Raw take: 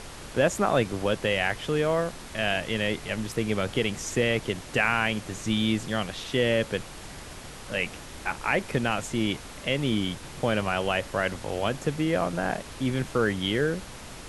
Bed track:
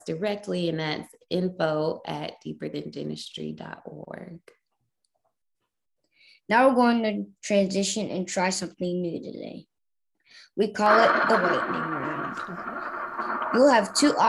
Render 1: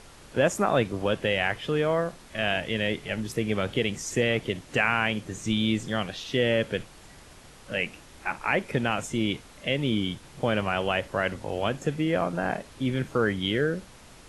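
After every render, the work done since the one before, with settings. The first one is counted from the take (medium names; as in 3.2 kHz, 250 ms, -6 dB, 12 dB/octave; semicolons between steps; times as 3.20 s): noise print and reduce 8 dB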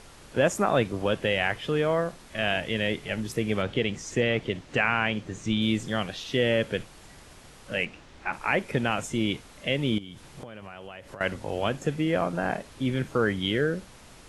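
3.62–5.62 s: distance through air 64 m; 7.85–8.33 s: distance through air 87 m; 9.98–11.21 s: compression 10:1, threshold -37 dBFS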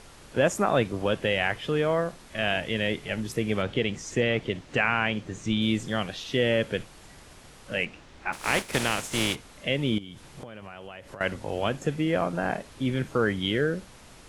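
8.32–9.34 s: spectral contrast reduction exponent 0.48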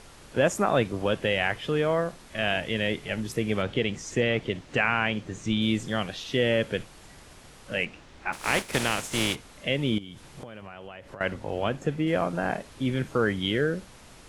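10.61–12.06 s: treble shelf 5.8 kHz -> 3.8 kHz -8 dB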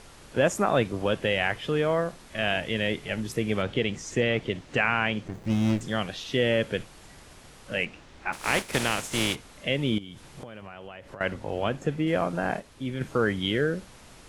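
5.28–5.81 s: sliding maximum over 33 samples; 12.60–13.01 s: gain -5 dB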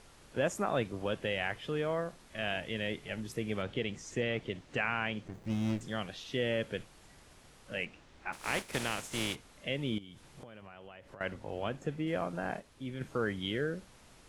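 trim -8.5 dB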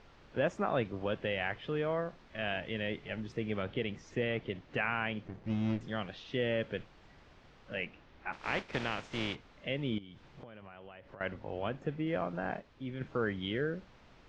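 low-pass 5.8 kHz 24 dB/octave; tone controls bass 0 dB, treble -9 dB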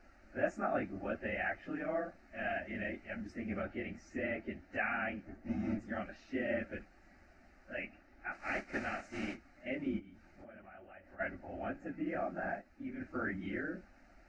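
phase randomisation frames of 50 ms; static phaser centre 680 Hz, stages 8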